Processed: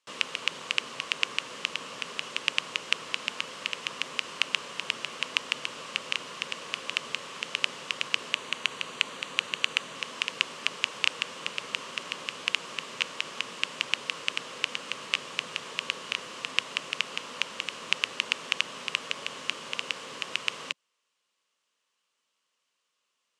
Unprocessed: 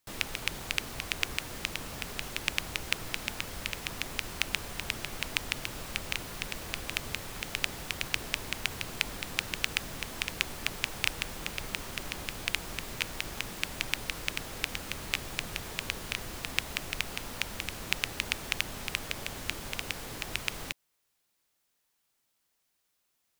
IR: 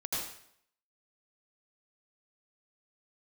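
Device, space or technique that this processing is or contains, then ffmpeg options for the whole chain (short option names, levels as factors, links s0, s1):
television speaker: -filter_complex "[0:a]highpass=f=180:w=0.5412,highpass=f=180:w=1.3066,equalizer=f=200:t=q:w=4:g=-5,equalizer=f=320:t=q:w=4:g=-6,equalizer=f=510:t=q:w=4:g=5,equalizer=f=760:t=q:w=4:g=-7,equalizer=f=1100:t=q:w=4:g=9,equalizer=f=2900:t=q:w=4:g=8,lowpass=f=8100:w=0.5412,lowpass=f=8100:w=1.3066,asettb=1/sr,asplit=3[s0][s1][s2];[s0]atrim=end=8.324[s3];[s1]atrim=start=8.32:end=9.96,asetpts=PTS-STARTPTS,afade=t=in:d=0.004:c=qsin,afade=t=out:st=1.636:d=0.004:c=qsin,bandreject=f=5200:w=6.7[s4];[s2]atrim=start=9.956[s5];[s3][s4]acrossfade=d=0.004:c1=hsin:c2=qsin[s6];[s6][s5]acrossfade=d=0.004:c1=qsin:c2=hsin"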